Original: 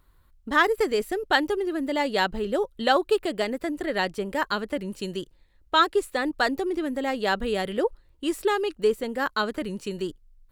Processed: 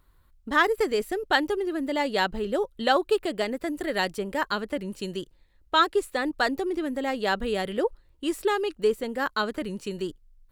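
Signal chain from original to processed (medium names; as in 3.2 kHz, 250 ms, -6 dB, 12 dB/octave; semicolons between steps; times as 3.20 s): 3.66–4.16 s: treble shelf 8 kHz -> 5.4 kHz +8.5 dB; trim -1 dB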